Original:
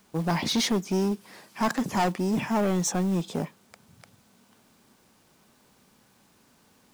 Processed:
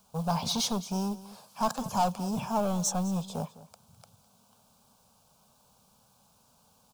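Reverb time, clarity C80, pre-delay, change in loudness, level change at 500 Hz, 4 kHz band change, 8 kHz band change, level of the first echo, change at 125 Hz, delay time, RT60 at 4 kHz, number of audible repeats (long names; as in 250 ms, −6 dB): no reverb audible, no reverb audible, no reverb audible, −4.0 dB, −5.0 dB, −3.0 dB, −1.0 dB, −17.5 dB, −4.0 dB, 207 ms, no reverb audible, 1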